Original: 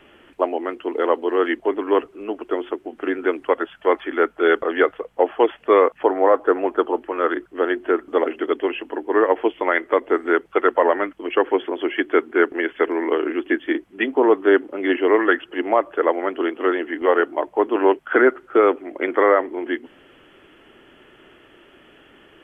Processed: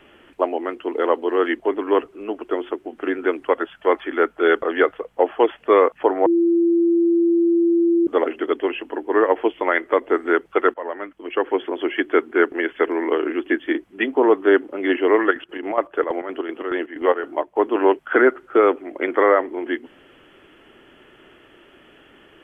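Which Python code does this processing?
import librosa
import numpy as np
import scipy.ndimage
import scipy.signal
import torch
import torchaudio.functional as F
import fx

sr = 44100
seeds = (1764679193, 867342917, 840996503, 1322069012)

y = fx.chopper(x, sr, hz=fx.line((15.23, 8.4), (17.73, 2.7)), depth_pct=65, duty_pct=60, at=(15.23, 17.73), fade=0.02)
y = fx.edit(y, sr, fx.bleep(start_s=6.26, length_s=1.81, hz=339.0, db=-13.5),
    fx.fade_in_from(start_s=10.74, length_s=1.01, floor_db=-17.0), tone=tone)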